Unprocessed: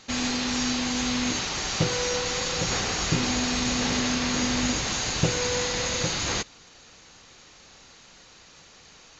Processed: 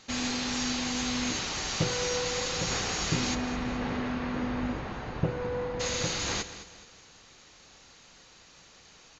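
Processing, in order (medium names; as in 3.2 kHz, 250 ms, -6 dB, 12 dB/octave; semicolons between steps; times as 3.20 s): 3.34–5.79 s: low-pass 2 kHz -> 1.1 kHz 12 dB/octave; feedback delay 211 ms, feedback 40%, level -13.5 dB; reverberation RT60 0.65 s, pre-delay 39 ms, DRR 18 dB; trim -4 dB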